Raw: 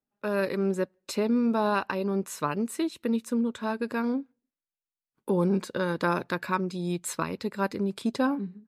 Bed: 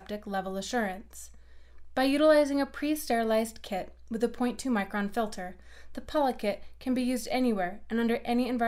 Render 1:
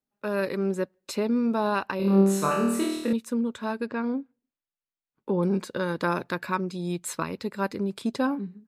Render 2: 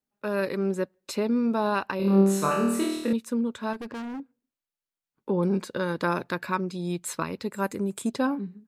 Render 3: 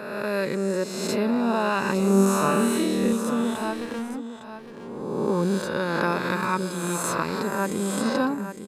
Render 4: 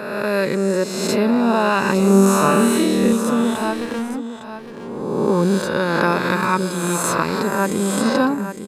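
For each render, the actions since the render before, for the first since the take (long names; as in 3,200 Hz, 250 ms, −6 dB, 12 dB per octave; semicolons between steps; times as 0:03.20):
0:01.97–0:03.13: flutter between parallel walls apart 4.4 metres, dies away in 0.89 s; 0:03.86–0:05.43: high-frequency loss of the air 170 metres
0:03.73–0:04.20: hard clipping −33 dBFS; 0:07.52–0:08.10: high shelf with overshoot 6,000 Hz +7 dB, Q 3
peak hold with a rise ahead of every peak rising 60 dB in 1.52 s; single-tap delay 859 ms −10.5 dB
level +6.5 dB; brickwall limiter −3 dBFS, peak gain reduction 1.5 dB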